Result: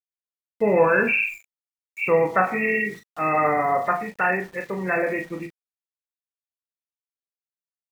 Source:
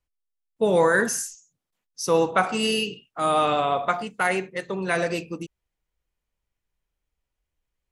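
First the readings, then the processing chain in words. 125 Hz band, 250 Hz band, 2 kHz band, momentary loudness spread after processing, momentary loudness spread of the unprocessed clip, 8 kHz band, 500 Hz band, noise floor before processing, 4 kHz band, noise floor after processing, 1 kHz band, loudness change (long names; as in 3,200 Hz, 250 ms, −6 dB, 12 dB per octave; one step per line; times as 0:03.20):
+0.5 dB, 0.0 dB, +4.0 dB, 11 LU, 12 LU, below −20 dB, +1.0 dB, −84 dBFS, below −15 dB, below −85 dBFS, +1.5 dB, +1.5 dB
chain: hearing-aid frequency compression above 1,700 Hz 4 to 1
centre clipping without the shift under −43 dBFS
ambience of single reflections 20 ms −10.5 dB, 38 ms −7.5 dB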